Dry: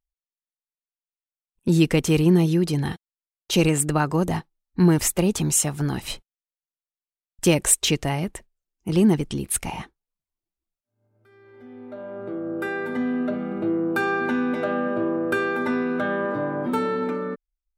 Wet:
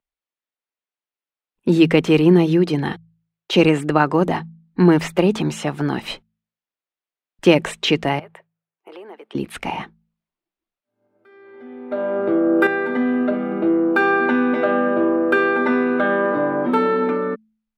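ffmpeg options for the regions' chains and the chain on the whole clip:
-filter_complex "[0:a]asettb=1/sr,asplit=3[a][b][c];[a]atrim=end=8.194[d];[b]atrim=start=8.19:end=9.35,asetpts=PTS-STARTPTS,afade=t=in:d=0.004:c=qsin,afade=t=out:st=1.156:d=0.004:c=qsin,highpass=f=480:w=0.5412,highpass=f=480:w=1.3066,equalizer=f=6.3k:w=0.7:g=-14.5,acompressor=threshold=-44dB:ratio=4:attack=3.2:release=140:knee=1:detection=peak[e];[c]atrim=start=9.346[f];[d][e]acrossfade=d=0.004:c1=hsin:c2=qsin[g];[g][f]acrossfade=d=0.004:c1=qsin:c2=hsin,asettb=1/sr,asplit=3[h][i][j];[h]atrim=end=11.914[k];[i]atrim=start=11.91:end=12.67,asetpts=PTS-STARTPTS,afade=t=in:d=0.004:c=qsin,afade=t=out:st=0.756:d=0.004:c=qsin,highshelf=f=8.6k:g=10.5,acontrast=69[l];[j]atrim=start=12.666[m];[k][l]acrossfade=d=0.004:c1=hsin:c2=qsin[n];[n][m]acrossfade=d=0.004:c1=qsin:c2=hsin,bandreject=f=54.63:t=h:w=4,bandreject=f=109.26:t=h:w=4,bandreject=f=163.89:t=h:w=4,bandreject=f=218.52:t=h:w=4,acrossover=split=5200[o][p];[p]acompressor=threshold=-32dB:ratio=4:attack=1:release=60[q];[o][q]amix=inputs=2:normalize=0,acrossover=split=180 3800:gain=0.178 1 0.158[r][s][t];[r][s][t]amix=inputs=3:normalize=0,volume=7dB"

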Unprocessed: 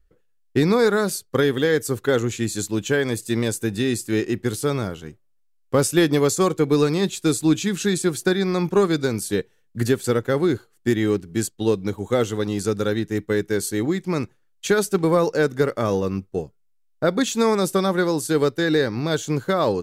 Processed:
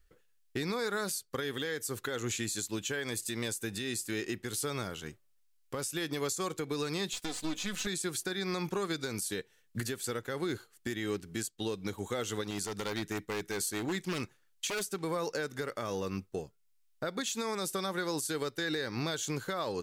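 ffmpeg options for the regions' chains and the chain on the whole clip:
-filter_complex "[0:a]asettb=1/sr,asplit=3[a][b][c];[a]atrim=end=7.134[d];[b]atrim=start=7.13:end=7.87,asetpts=PTS-STARTPTS,afade=t=in:d=0.004:c=qsin,afade=t=out:st=0.736:d=0.004:c=qsin,aeval=exprs='if(lt(val(0),0),0.251*val(0),val(0))':c=same,acrossover=split=6600[e][f];[f]acompressor=threshold=-46dB:ratio=4:attack=1:release=60[g];[e][g]amix=inputs=2:normalize=0,aecho=1:1:4:0.59,atrim=end_sample=32634[h];[c]atrim=start=7.866[i];[d][h]acrossfade=d=0.004:c1=hsin:c2=qsin[j];[j][i]acrossfade=d=0.004:c1=qsin:c2=hsin,asettb=1/sr,asplit=3[k][l][m];[k]atrim=end=12.504[n];[l]atrim=start=12.5:end=14.83,asetpts=PTS-STARTPTS,afade=t=in:d=0.004:c=qsin,afade=t=out:st=2.326:d=0.004:c=qsin,acompressor=threshold=-25dB:ratio=1.5:attack=3.2:release=140:knee=1:detection=peak,aeval=exprs='0.106*(abs(mod(val(0)/0.106+3,4)-2)-1)':c=same[o];[m]atrim=start=14.826[p];[n][o]acrossfade=d=0.004:c1=hsin:c2=qsin[q];[q][p]acrossfade=d=0.004:c1=qsin:c2=hsin,tiltshelf=f=970:g=-5.5,acompressor=threshold=-24dB:ratio=4,alimiter=level_in=0.5dB:limit=-24dB:level=0:latency=1:release=391,volume=-0.5dB"

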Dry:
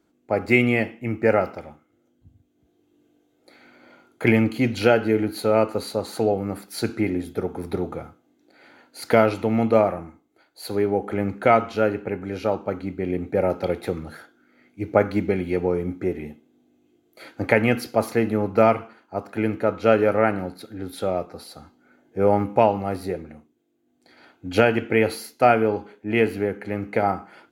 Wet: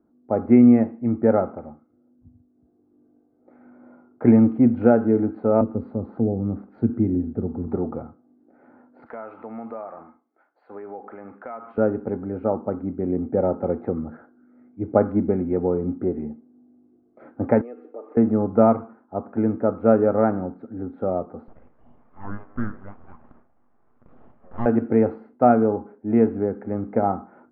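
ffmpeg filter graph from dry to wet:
-filter_complex "[0:a]asettb=1/sr,asplit=3[a][b][c];[a]atrim=end=5.614[d];[b]atrim=start=5.61:end=7.68,asetpts=PTS-STARTPTS,afade=t=in:d=0.004:c=qsin,afade=t=out:st=2.066:d=0.004:c=qsin,lowshelf=f=130:g=9,acrossover=split=380|3000[e][f][g];[f]acompressor=threshold=-47dB:ratio=2:attack=3.2:release=140:knee=2.83:detection=peak[h];[e][h][g]amix=inputs=3:normalize=0[i];[c]atrim=start=7.676[j];[d][i]acrossfade=d=0.004:c1=hsin:c2=qsin[k];[k][j]acrossfade=d=0.004:c1=qsin:c2=hsin,asettb=1/sr,asplit=3[l][m][n];[l]atrim=end=9.064[o];[m]atrim=start=9.06:end=11.78,asetpts=PTS-STARTPTS,afade=t=in:d=0.004:c=qsin,afade=t=out:st=2.716:d=0.004:c=qsin,highpass=f=350:p=1,tiltshelf=f=760:g=-10,acompressor=threshold=-34dB:ratio=3:attack=3.2:release=140:knee=1:detection=peak[p];[n]atrim=start=11.776[q];[o][p]acrossfade=d=0.004:c1=hsin:c2=qsin[r];[r][q]acrossfade=d=0.004:c1=qsin:c2=hsin,asettb=1/sr,asplit=3[s][t][u];[s]atrim=end=17.614[v];[t]atrim=start=17.61:end=18.17,asetpts=PTS-STARTPTS,afade=t=in:d=0.004:c=qsin,afade=t=out:st=0.556:d=0.004:c=qsin,aecho=1:1:6.6:0.49,atrim=end_sample=24696,acompressor=threshold=-33dB:ratio=3:attack=3.2:release=140:knee=1:detection=peak,highpass=f=370:w=0.5412,highpass=f=370:w=1.3066,equalizer=f=390:t=q:w=4:g=4,equalizer=f=690:t=q:w=4:g=-8,equalizer=f=990:t=q:w=4:g=-10,equalizer=f=1.5k:t=q:w=4:g=-8,equalizer=f=2.1k:t=q:w=4:g=-4,lowpass=f=3.2k:w=0.5412,lowpass=f=3.2k:w=1.3066[w];[u]atrim=start=18.166[x];[v][w]acrossfade=d=0.004:c1=hsin:c2=qsin[y];[y][x]acrossfade=d=0.004:c1=qsin:c2=hsin,asettb=1/sr,asplit=3[z][aa][ab];[z]atrim=end=21.484[ac];[aa]atrim=start=21.48:end=24.66,asetpts=PTS-STARTPTS,afade=t=in:d=0.004:c=qsin,afade=t=out:st=3.176:d=0.004:c=qsin,highpass=1.1k,acompressor=mode=upward:threshold=-35dB:ratio=2.5:attack=3.2:release=140:knee=2.83:detection=peak,aeval=exprs='abs(val(0))':c=same[ad];[ab]atrim=start=24.656[ae];[ac][ad]acrossfade=d=0.004:c1=hsin:c2=qsin[af];[af][ae]acrossfade=d=0.004:c1=qsin:c2=hsin,lowpass=f=1.2k:w=0.5412,lowpass=f=1.2k:w=1.3066,equalizer=f=240:t=o:w=0.23:g=11,bandreject=f=950:w=22"

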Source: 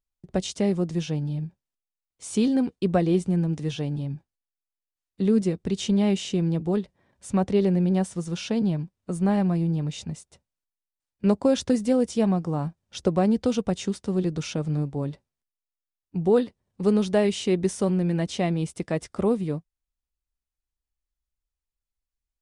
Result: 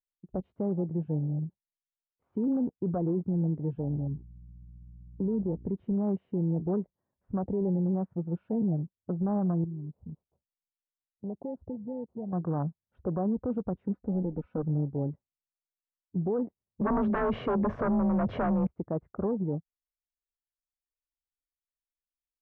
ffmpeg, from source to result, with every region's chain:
-filter_complex "[0:a]asettb=1/sr,asplit=3[a][b][c];[a]atrim=end=3.794[d];[b]atrim=start=3.79:end=5.65,asetpts=PTS-STARTPTS,afade=t=in:d=0.004:c=qsin,afade=t=out:st=1.856:d=0.004:c=qsin,aeval=exprs='val(0)+0.00631*(sin(2*PI*60*n/s)+sin(2*PI*2*60*n/s)/2+sin(2*PI*3*60*n/s)/3+sin(2*PI*4*60*n/s)/4+sin(2*PI*5*60*n/s)/5)':c=same,highpass=f=50:w=0.5412,highpass=f=50:w=1.3066,highshelf=f=1.6k:t=q:w=3:g=-9.5[e];[c]atrim=start=5.646[f];[d][e]acrossfade=d=0.004:c1=hsin:c2=qsin[g];[g][f]acrossfade=d=0.004:c1=qsin:c2=hsin,asettb=1/sr,asplit=3[h][i][j];[h]atrim=end=9.644[k];[i]atrim=start=9.64:end=12.33,asetpts=PTS-STARTPTS,afade=t=in:d=0.004:c=qsin,afade=t=out:st=2.686:d=0.004:c=qsin,lowpass=f=1k:w=0.5412,lowpass=f=1k:w=1.3066,acompressor=threshold=-38dB:ratio=2.5:attack=3.2:release=140:knee=1:detection=peak[l];[j]atrim=start=12.326[m];[k][l]acrossfade=d=0.004:c1=hsin:c2=qsin[n];[n][m]acrossfade=d=0.004:c1=qsin:c2=hsin,asettb=1/sr,asplit=3[o][p][q];[o]atrim=end=13.844[r];[p]atrim=start=13.84:end=14.63,asetpts=PTS-STARTPTS,afade=t=in:d=0.004:c=qsin,afade=t=out:st=0.786:d=0.004:c=qsin,asubboost=boost=10.5:cutoff=58,aecho=1:1:4:0.57,atrim=end_sample=34839[s];[q]atrim=start=14.626[t];[r][s]acrossfade=d=0.004:c1=hsin:c2=qsin[u];[u][t]acrossfade=d=0.004:c1=qsin:c2=hsin,asettb=1/sr,asplit=3[v][w][x];[v]atrim=end=16.814[y];[w]atrim=start=16.81:end=18.67,asetpts=PTS-STARTPTS,afade=t=in:d=0.004:c=qsin,afade=t=out:st=1.856:d=0.004:c=qsin,aecho=1:1:1.8:0.51,atrim=end_sample=82026,afreqshift=29,aeval=exprs='0.376*sin(PI/2*4.47*val(0)/0.376)':c=same[z];[x]atrim=start=18.666[aa];[y][z]acrossfade=d=0.004:c1=hsin:c2=qsin[ab];[ab][aa]acrossfade=d=0.004:c1=qsin:c2=hsin,afwtdn=0.02,lowpass=f=1.4k:w=0.5412,lowpass=f=1.4k:w=1.3066,alimiter=limit=-20.5dB:level=0:latency=1:release=26,volume=-2dB"

